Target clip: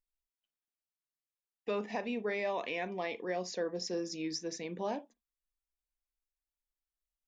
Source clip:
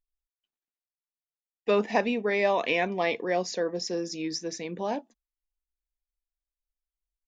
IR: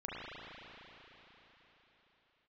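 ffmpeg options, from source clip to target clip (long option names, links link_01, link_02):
-filter_complex "[0:a]alimiter=limit=-20dB:level=0:latency=1:release=347,asplit=2[link_01][link_02];[1:a]atrim=start_sample=2205,atrim=end_sample=3087[link_03];[link_02][link_03]afir=irnorm=-1:irlink=0,volume=-7.5dB[link_04];[link_01][link_04]amix=inputs=2:normalize=0,volume=-7dB"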